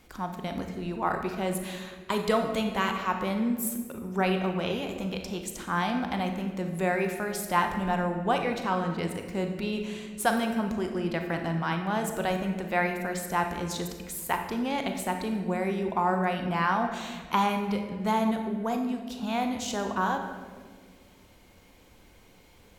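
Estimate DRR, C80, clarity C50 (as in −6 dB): 4.0 dB, 8.0 dB, 6.0 dB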